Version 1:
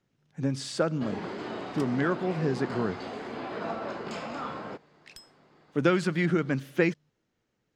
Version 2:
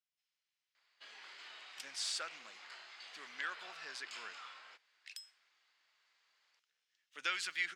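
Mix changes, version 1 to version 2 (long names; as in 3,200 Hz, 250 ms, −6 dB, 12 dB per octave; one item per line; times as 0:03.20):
speech: entry +1.40 s
first sound −4.0 dB
master: add Chebyshev high-pass filter 2,500 Hz, order 2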